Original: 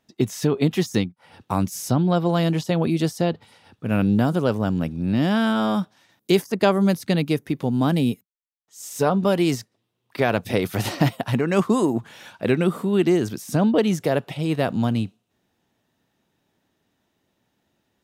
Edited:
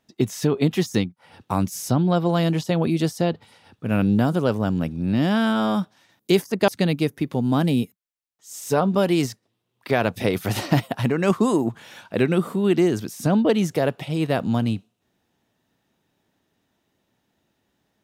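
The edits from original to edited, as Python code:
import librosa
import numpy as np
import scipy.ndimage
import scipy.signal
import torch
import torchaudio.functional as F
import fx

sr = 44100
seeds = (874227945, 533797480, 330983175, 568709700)

y = fx.edit(x, sr, fx.cut(start_s=6.68, length_s=0.29), tone=tone)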